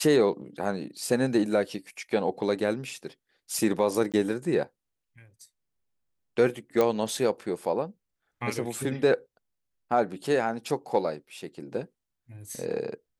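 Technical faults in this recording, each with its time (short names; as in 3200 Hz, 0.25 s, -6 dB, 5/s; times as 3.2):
4.12–4.14 gap 17 ms
6.81 pop -12 dBFS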